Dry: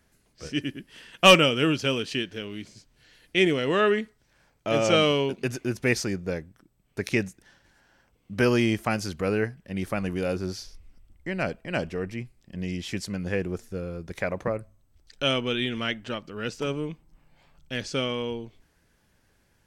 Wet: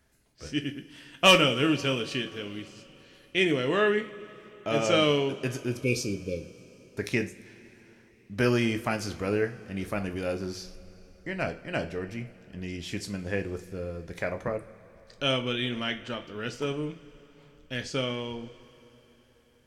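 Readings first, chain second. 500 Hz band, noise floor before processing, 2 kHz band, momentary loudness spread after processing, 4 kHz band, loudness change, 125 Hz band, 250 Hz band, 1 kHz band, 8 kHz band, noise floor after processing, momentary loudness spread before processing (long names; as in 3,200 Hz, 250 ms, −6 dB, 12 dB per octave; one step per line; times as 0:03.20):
−2.5 dB, −67 dBFS, −2.0 dB, 18 LU, −2.0 dB, −2.5 dB, −2.0 dB, −2.5 dB, −3.0 dB, −2.0 dB, −60 dBFS, 15 LU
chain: time-frequency box erased 0:05.71–0:06.70, 580–2,200 Hz
coupled-rooms reverb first 0.3 s, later 4 s, from −21 dB, DRR 6 dB
level −3 dB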